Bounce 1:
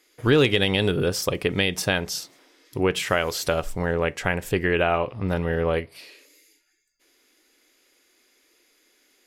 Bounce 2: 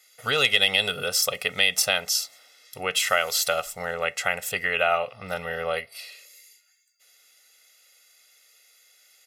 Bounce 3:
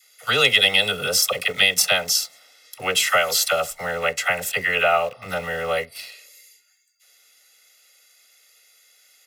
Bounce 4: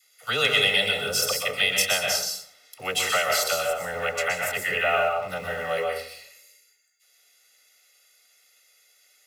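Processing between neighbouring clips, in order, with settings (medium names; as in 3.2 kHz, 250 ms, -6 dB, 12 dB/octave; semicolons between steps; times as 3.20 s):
high-pass 1.2 kHz 6 dB/octave; treble shelf 5 kHz +5.5 dB; comb 1.5 ms, depth 100%
phase dispersion lows, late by 48 ms, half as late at 710 Hz; in parallel at -11.5 dB: bit crusher 6-bit; on the sum: trim +2 dB
plate-style reverb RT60 0.59 s, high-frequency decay 0.6×, pre-delay 110 ms, DRR 1 dB; trim -6 dB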